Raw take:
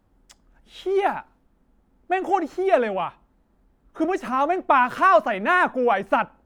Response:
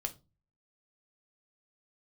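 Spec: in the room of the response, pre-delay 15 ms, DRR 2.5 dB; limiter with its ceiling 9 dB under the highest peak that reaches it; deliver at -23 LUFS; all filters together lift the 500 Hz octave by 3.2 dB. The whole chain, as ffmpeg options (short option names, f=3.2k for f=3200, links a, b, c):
-filter_complex "[0:a]equalizer=f=500:t=o:g=4.5,alimiter=limit=-12dB:level=0:latency=1,asplit=2[a][b];[1:a]atrim=start_sample=2205,adelay=15[c];[b][c]afir=irnorm=-1:irlink=0,volume=-3dB[d];[a][d]amix=inputs=2:normalize=0,volume=-2.5dB"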